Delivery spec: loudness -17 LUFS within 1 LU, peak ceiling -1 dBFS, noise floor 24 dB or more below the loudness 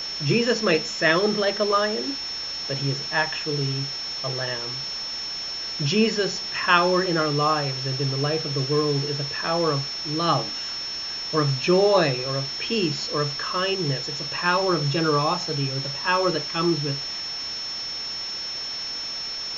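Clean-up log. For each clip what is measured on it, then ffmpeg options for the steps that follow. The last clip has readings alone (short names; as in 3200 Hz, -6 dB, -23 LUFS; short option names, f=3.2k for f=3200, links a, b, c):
steady tone 5400 Hz; tone level -29 dBFS; noise floor -32 dBFS; noise floor target -48 dBFS; loudness -23.5 LUFS; peak -3.5 dBFS; loudness target -17.0 LUFS
-> -af "bandreject=f=5.4k:w=30"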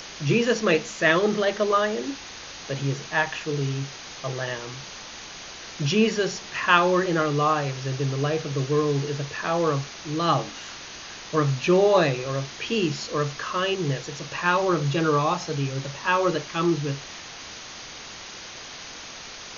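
steady tone none; noise floor -40 dBFS; noise floor target -49 dBFS
-> -af "afftdn=nr=9:nf=-40"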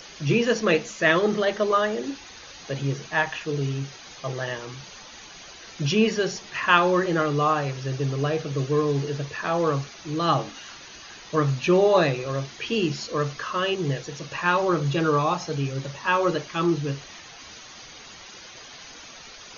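noise floor -44 dBFS; noise floor target -49 dBFS
-> -af "afftdn=nr=6:nf=-44"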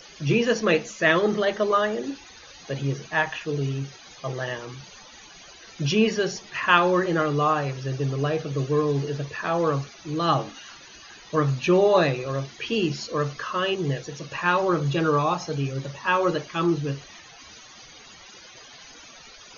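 noise floor -47 dBFS; noise floor target -49 dBFS
-> -af "afftdn=nr=6:nf=-47"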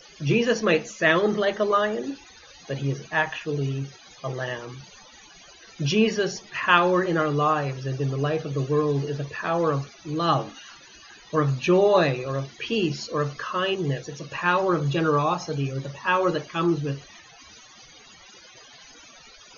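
noise floor -50 dBFS; loudness -24.5 LUFS; peak -4.0 dBFS; loudness target -17.0 LUFS
-> -af "volume=7.5dB,alimiter=limit=-1dB:level=0:latency=1"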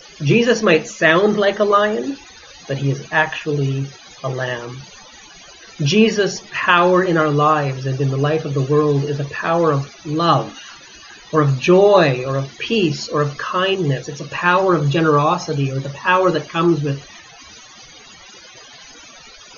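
loudness -17.0 LUFS; peak -1.0 dBFS; noise floor -42 dBFS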